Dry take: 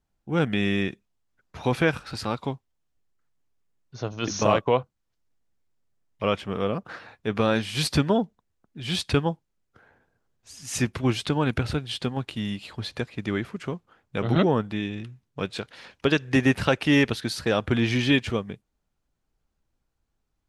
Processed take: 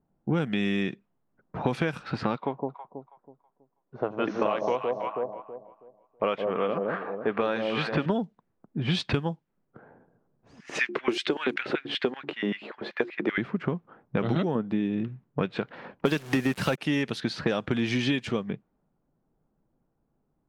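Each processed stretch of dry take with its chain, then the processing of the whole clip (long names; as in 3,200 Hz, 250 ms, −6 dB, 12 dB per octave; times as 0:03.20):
0:02.36–0:08.06: bass and treble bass −14 dB, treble −13 dB + delay that swaps between a low-pass and a high-pass 162 ms, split 830 Hz, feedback 53%, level −5 dB
0:10.60–0:13.38: hum removal 70.93 Hz, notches 5 + auto-filter high-pass square 5.2 Hz 370–1,900 Hz
0:14.55–0:15.08: low-pass filter 1,900 Hz 6 dB per octave + parametric band 300 Hz +7 dB 2.8 octaves
0:16.05–0:16.78: leveller curve on the samples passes 2 + bit-depth reduction 6 bits, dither none
whole clip: low-pass that shuts in the quiet parts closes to 810 Hz, open at −18 dBFS; low shelf with overshoot 110 Hz −10.5 dB, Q 1.5; downward compressor 10 to 1, threshold −32 dBFS; level +9 dB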